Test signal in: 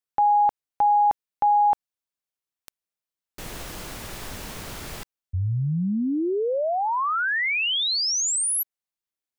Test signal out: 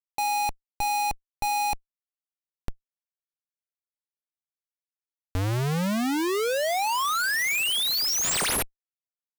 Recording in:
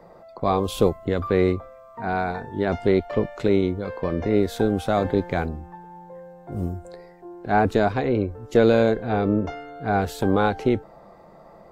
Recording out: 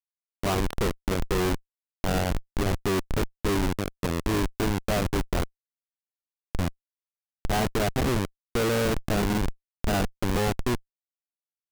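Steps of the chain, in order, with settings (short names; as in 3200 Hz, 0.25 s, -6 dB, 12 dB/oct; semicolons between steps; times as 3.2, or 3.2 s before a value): Schmitt trigger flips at -22 dBFS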